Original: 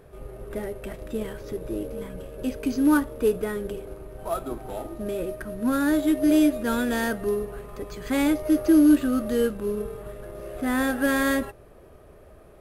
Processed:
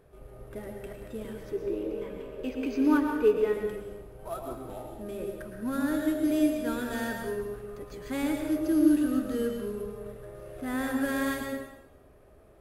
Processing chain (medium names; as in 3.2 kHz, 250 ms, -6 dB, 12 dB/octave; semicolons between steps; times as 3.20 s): 1.51–3.54 s: fifteen-band graphic EQ 100 Hz -11 dB, 400 Hz +9 dB, 1 kHz +5 dB, 2.5 kHz +8 dB, 10 kHz -10 dB; plate-style reverb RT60 0.92 s, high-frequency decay 0.9×, pre-delay 100 ms, DRR 3 dB; trim -8.5 dB